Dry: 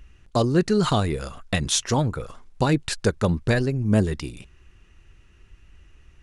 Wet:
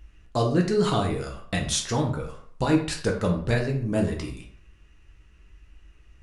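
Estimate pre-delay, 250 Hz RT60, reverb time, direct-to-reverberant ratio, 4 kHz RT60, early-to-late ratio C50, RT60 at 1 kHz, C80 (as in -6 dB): 5 ms, 0.55 s, 0.55 s, 0.0 dB, 0.40 s, 7.5 dB, 0.55 s, 11.5 dB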